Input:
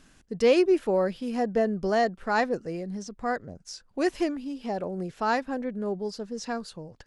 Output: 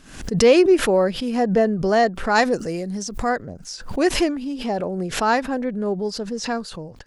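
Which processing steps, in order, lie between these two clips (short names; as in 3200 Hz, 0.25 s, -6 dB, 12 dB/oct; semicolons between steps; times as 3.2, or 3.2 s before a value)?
2.34–3.28 high shelf 4100 Hz -> 6000 Hz +12 dB; backwards sustainer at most 91 dB/s; gain +6.5 dB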